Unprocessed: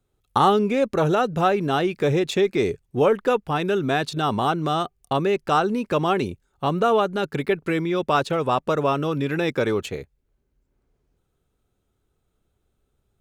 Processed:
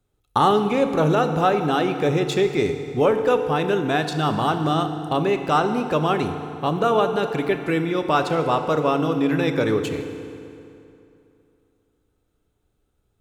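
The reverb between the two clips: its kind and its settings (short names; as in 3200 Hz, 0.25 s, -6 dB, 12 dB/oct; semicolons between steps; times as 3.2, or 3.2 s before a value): FDN reverb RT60 2.8 s, high-frequency decay 0.75×, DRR 6.5 dB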